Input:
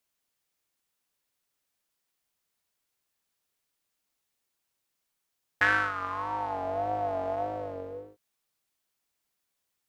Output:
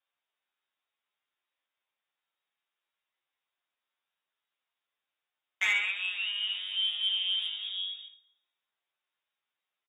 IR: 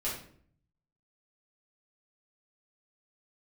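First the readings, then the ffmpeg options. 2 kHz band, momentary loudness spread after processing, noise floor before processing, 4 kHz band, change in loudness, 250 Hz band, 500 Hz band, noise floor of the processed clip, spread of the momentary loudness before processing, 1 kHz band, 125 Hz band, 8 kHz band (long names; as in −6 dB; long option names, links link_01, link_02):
−2.0 dB, 7 LU, −82 dBFS, +21.0 dB, +1.0 dB, below −25 dB, below −30 dB, below −85 dBFS, 14 LU, −21.0 dB, below −30 dB, can't be measured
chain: -filter_complex "[0:a]asplit=2[link_01][link_02];[link_02]adelay=34,volume=-10.5dB[link_03];[link_01][link_03]amix=inputs=2:normalize=0,asplit=2[link_04][link_05];[1:a]atrim=start_sample=2205[link_06];[link_05][link_06]afir=irnorm=-1:irlink=0,volume=-14dB[link_07];[link_04][link_07]amix=inputs=2:normalize=0,lowpass=frequency=3200:width_type=q:width=0.5098,lowpass=frequency=3200:width_type=q:width=0.6013,lowpass=frequency=3200:width_type=q:width=0.9,lowpass=frequency=3200:width_type=q:width=2.563,afreqshift=-3800,highpass=frequency=320:poles=1,asoftclip=type=tanh:threshold=-15dB,asplit=2[link_08][link_09];[link_09]adelay=10.9,afreqshift=0.58[link_10];[link_08][link_10]amix=inputs=2:normalize=1,volume=1dB"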